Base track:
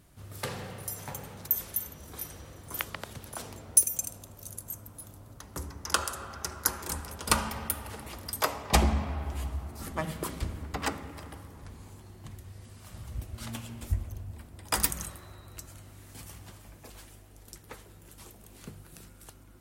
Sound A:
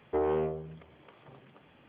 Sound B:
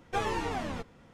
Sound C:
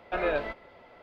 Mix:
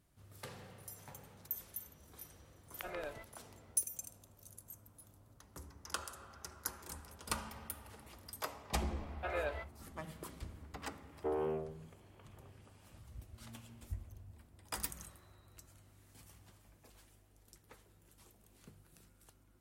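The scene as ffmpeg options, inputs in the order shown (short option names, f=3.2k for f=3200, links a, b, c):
-filter_complex "[3:a]asplit=2[a][b];[0:a]volume=-13.5dB[c];[b]acrossover=split=320[d][e];[e]adelay=440[f];[d][f]amix=inputs=2:normalize=0[g];[1:a]equalizer=f=2k:t=o:w=0.25:g=-4[h];[a]atrim=end=1.02,asetpts=PTS-STARTPTS,volume=-16dB,afade=t=in:d=0.004:c=hsin,afade=t=out:st=1.016:d=0.004:c=hsin,adelay=2710[i];[g]atrim=end=1.02,asetpts=PTS-STARTPTS,volume=-9dB,afade=t=in:d=0.004:c=hsin,afade=t=out:st=1.016:d=0.004:c=hsin,adelay=8670[j];[h]atrim=end=1.88,asetpts=PTS-STARTPTS,volume=-7.5dB,afade=t=in:d=0.004:c=hsin,afade=t=out:st=1.876:d=0.004:c=hsin,adelay=11110[k];[c][i][j][k]amix=inputs=4:normalize=0"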